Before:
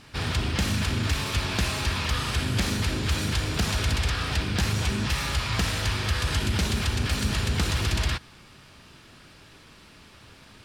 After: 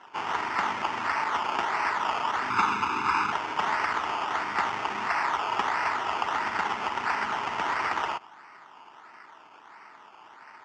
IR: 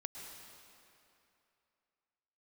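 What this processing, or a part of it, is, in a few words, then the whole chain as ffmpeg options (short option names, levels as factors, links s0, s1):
circuit-bent sampling toy: -filter_complex "[0:a]acrusher=samples=18:mix=1:aa=0.000001:lfo=1:lforange=10.8:lforate=1.5,highpass=500,equalizer=f=530:t=q:w=4:g=-10,equalizer=f=910:t=q:w=4:g=10,equalizer=f=1300:t=q:w=4:g=7,equalizer=f=2000:t=q:w=4:g=6,equalizer=f=2800:t=q:w=4:g=5,equalizer=f=4000:t=q:w=4:g=-10,lowpass=f=5600:w=0.5412,lowpass=f=5600:w=1.3066,asettb=1/sr,asplit=3[s0][s1][s2];[s0]atrim=end=2.504[s3];[s1]atrim=start=2.5:end=3.32,asetpts=PTS-STARTPTS,afade=t=in:d=0.004:c=qsin,afade=t=out:st=0.816:d=0.004:c=qsin,aecho=1:1:0.8:0.99,atrim=end_sample=36162[s4];[s2]atrim=start=3.316[s5];[s3][s4]acrossfade=d=0.004:c1=hsin:c2=qsin[s6];[s6][s5]acrossfade=d=0.004:c1=qsin:c2=hsin"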